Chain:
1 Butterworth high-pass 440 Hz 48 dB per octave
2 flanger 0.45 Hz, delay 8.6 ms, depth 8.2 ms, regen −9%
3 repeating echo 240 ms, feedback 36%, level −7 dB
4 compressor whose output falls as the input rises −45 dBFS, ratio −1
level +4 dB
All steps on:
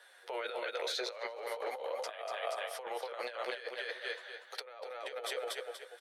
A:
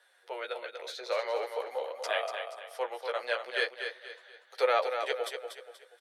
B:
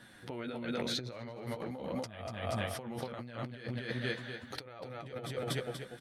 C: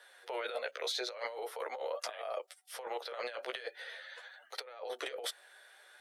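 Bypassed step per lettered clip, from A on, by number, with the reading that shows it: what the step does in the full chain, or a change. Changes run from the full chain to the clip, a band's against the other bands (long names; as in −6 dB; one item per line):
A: 4, change in momentary loudness spread +10 LU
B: 1, 250 Hz band +18.0 dB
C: 3, change in momentary loudness spread +4 LU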